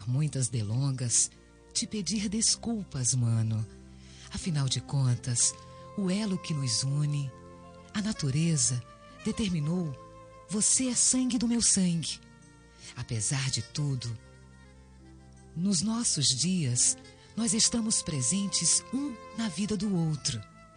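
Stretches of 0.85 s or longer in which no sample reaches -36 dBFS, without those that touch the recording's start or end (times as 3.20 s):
14.16–15.57 s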